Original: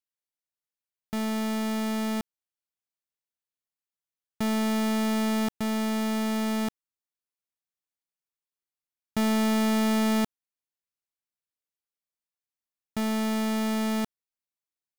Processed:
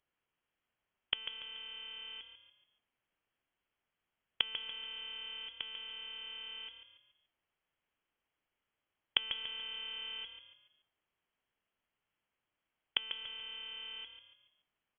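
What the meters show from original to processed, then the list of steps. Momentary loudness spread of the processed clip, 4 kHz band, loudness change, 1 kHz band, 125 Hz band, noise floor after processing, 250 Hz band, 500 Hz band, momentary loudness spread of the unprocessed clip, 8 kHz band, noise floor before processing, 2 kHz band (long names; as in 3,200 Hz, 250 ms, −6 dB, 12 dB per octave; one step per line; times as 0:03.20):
13 LU, +1.5 dB, −12.5 dB, −22.5 dB, below −30 dB, below −85 dBFS, below −40 dB, −28.5 dB, 9 LU, below −40 dB, below −85 dBFS, −9.0 dB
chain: one-sided soft clipper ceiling −35.5 dBFS
gate with flip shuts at −30 dBFS, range −28 dB
echo with shifted repeats 143 ms, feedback 40%, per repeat −36 Hz, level −9.5 dB
voice inversion scrambler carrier 3,300 Hz
level +12 dB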